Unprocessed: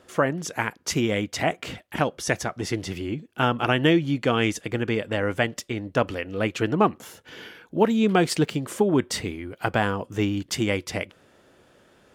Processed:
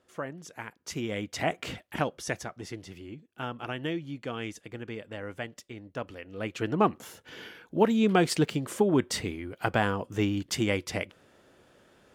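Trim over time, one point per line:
0.67 s -14 dB
1.69 s -2 dB
2.86 s -13.5 dB
6.14 s -13.5 dB
6.89 s -3 dB

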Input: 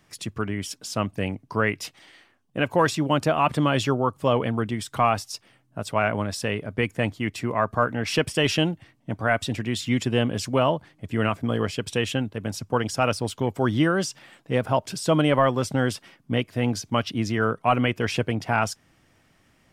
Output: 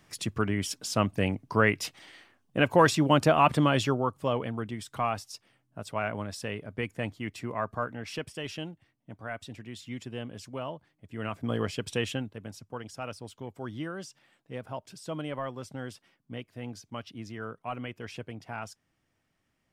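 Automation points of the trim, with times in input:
3.41 s 0 dB
4.48 s -8.5 dB
7.65 s -8.5 dB
8.42 s -15.5 dB
11.08 s -15.5 dB
11.51 s -5 dB
12.03 s -5 dB
12.68 s -15.5 dB

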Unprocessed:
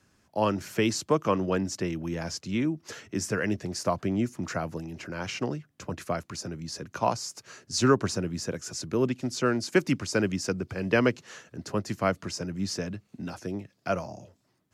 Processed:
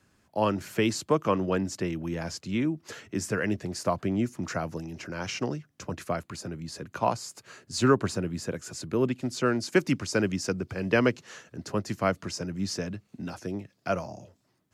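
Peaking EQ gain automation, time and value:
peaking EQ 5.7 kHz 0.39 oct
4.09 s -4.5 dB
4.72 s +3.5 dB
5.83 s +3.5 dB
6.29 s -8 dB
9.06 s -8 dB
9.74 s -0.5 dB

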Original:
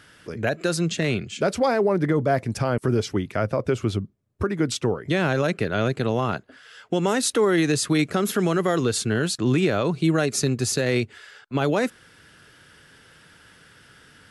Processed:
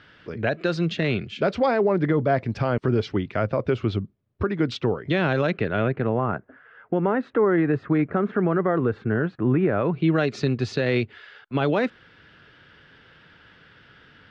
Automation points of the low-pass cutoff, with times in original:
low-pass 24 dB/octave
5.46 s 4.1 kHz
6.19 s 1.8 kHz
9.69 s 1.8 kHz
10.22 s 3.9 kHz

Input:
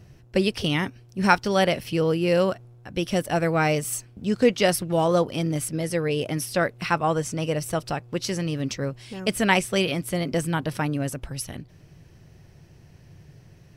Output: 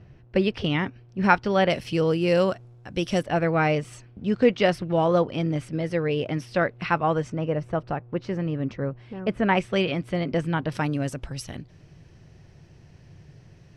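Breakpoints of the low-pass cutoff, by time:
2.9 kHz
from 1.70 s 7.6 kHz
from 3.23 s 3.1 kHz
from 7.30 s 1.6 kHz
from 9.57 s 3 kHz
from 10.72 s 6.8 kHz

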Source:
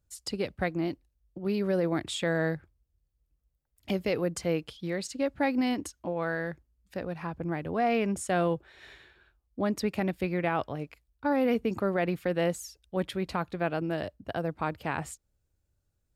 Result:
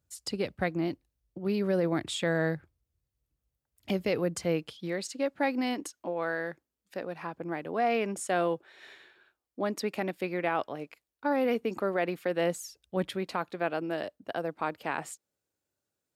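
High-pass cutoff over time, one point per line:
4.43 s 80 Hz
5.13 s 270 Hz
12.31 s 270 Hz
13.00 s 77 Hz
13.27 s 270 Hz

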